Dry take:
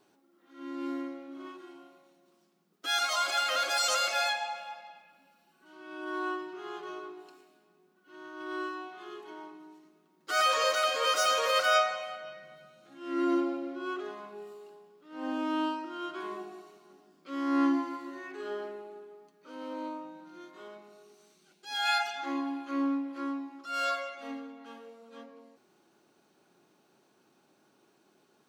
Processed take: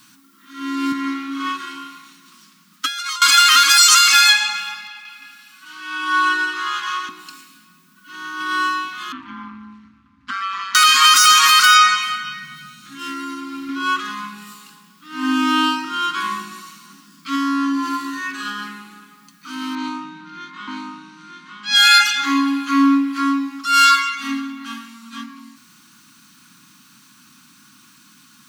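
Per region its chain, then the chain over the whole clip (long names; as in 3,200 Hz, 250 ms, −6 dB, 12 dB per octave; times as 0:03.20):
0:00.92–0:03.22: high-pass filter 360 Hz 6 dB per octave + high-shelf EQ 6,500 Hz −8 dB + compressor whose output falls as the input rises −42 dBFS
0:04.88–0:07.09: meter weighting curve A + echo with a time of its own for lows and highs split 1,200 Hz, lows 87 ms, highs 170 ms, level −4.5 dB
0:09.12–0:10.75: low-pass filter 2,100 Hz + downward compressor 12 to 1, threshold −37 dBFS + ring modulation 96 Hz
0:12.99–0:13.69: high-shelf EQ 6,800 Hz +8.5 dB + downward compressor 8 to 1, threshold −38 dBFS
0:17.35–0:18.66: notch filter 2,100 Hz, Q 8.1 + downward compressor 10 to 1, threshold −32 dBFS
0:19.75–0:22.08: low-pass that shuts in the quiet parts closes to 2,500 Hz, open at −29.5 dBFS + single-tap delay 924 ms −5 dB
whole clip: elliptic band-stop filter 260–1,100 Hz, stop band 70 dB; high-shelf EQ 3,700 Hz +8 dB; boost into a limiter +20 dB; level −1 dB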